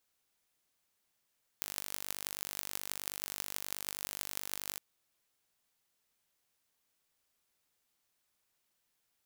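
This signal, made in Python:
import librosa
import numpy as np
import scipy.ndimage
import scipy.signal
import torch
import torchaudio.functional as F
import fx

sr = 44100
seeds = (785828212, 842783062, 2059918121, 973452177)

y = fx.impulse_train(sr, length_s=3.17, per_s=49.4, accent_every=8, level_db=-7.5)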